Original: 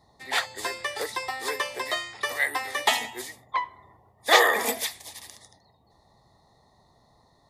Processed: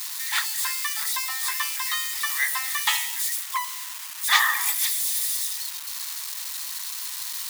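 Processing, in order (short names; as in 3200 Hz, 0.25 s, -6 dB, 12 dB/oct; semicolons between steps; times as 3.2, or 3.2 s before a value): switching spikes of -20.5 dBFS; steep high-pass 940 Hz 48 dB/oct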